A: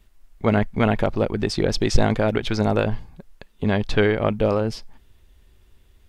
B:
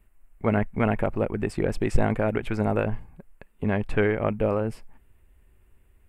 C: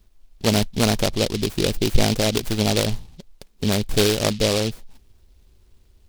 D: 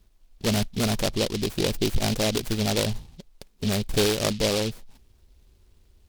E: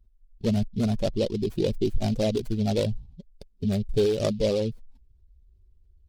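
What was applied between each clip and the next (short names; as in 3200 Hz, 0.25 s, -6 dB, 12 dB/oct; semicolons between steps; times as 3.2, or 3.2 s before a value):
band shelf 4600 Hz -15 dB 1.2 oct; gain -4 dB
noise-modulated delay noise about 3600 Hz, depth 0.17 ms; gain +4 dB
tube stage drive 14 dB, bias 0.5
spectral contrast raised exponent 1.7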